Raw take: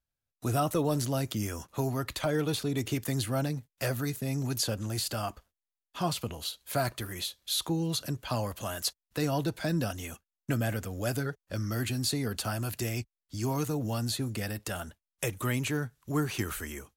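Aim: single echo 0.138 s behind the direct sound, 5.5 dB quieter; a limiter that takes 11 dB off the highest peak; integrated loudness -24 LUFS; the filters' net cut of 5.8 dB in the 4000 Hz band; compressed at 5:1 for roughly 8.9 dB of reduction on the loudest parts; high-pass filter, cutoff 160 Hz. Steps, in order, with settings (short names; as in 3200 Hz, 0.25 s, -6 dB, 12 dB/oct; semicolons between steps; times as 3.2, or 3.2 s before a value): HPF 160 Hz; bell 4000 Hz -7 dB; compressor 5:1, threshold -35 dBFS; limiter -31.5 dBFS; echo 0.138 s -5.5 dB; gain +17 dB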